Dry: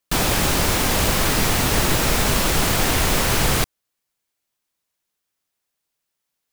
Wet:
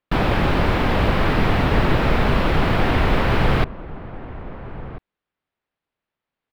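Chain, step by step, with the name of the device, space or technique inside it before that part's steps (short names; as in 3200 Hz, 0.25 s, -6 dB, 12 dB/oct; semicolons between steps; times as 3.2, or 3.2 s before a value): shout across a valley (air absorption 420 m; outdoor echo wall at 230 m, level -15 dB); gain +3.5 dB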